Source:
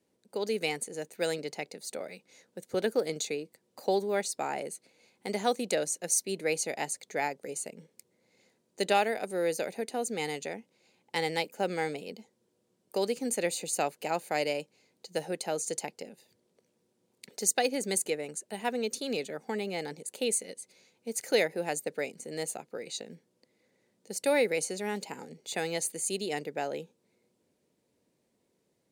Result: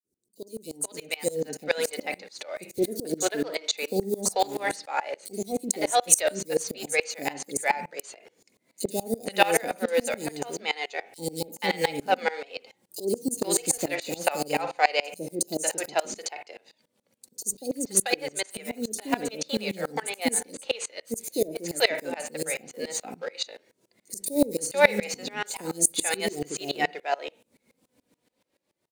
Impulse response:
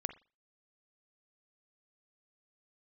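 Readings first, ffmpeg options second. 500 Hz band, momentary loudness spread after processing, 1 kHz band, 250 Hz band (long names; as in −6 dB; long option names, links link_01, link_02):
+3.0 dB, 12 LU, +6.0 dB, +5.5 dB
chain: -filter_complex "[0:a]highshelf=frequency=4700:gain=4.5,dynaudnorm=framelen=100:gausssize=21:maxgain=14dB,flanger=delay=2.6:depth=1.6:regen=47:speed=0.38:shape=triangular,acrusher=bits=5:mode=log:mix=0:aa=0.000001,acrossover=split=480|5400[link_01][link_02][link_03];[link_01]adelay=40[link_04];[link_02]adelay=480[link_05];[link_04][link_05][link_03]amix=inputs=3:normalize=0,asplit=2[link_06][link_07];[1:a]atrim=start_sample=2205[link_08];[link_07][link_08]afir=irnorm=-1:irlink=0,volume=8.5dB[link_09];[link_06][link_09]amix=inputs=2:normalize=0,aeval=exprs='val(0)*pow(10,-24*if(lt(mod(-7*n/s,1),2*abs(-7)/1000),1-mod(-7*n/s,1)/(2*abs(-7)/1000),(mod(-7*n/s,1)-2*abs(-7)/1000)/(1-2*abs(-7)/1000))/20)':channel_layout=same,volume=-4.5dB"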